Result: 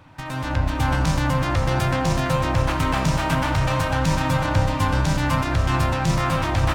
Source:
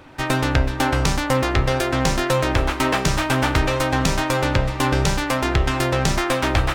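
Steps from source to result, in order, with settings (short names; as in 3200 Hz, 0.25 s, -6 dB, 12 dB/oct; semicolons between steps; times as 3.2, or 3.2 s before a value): limiter -16.5 dBFS, peak gain reduction 11 dB; echo with dull and thin repeats by turns 0.248 s, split 820 Hz, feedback 57%, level -3.5 dB; on a send at -13 dB: reverb RT60 0.70 s, pre-delay 58 ms; on the sum: AGC gain up to 8.5 dB; thirty-one-band EQ 100 Hz +12 dB, 160 Hz +10 dB, 400 Hz -11 dB, 1000 Hz +5 dB; gain -6.5 dB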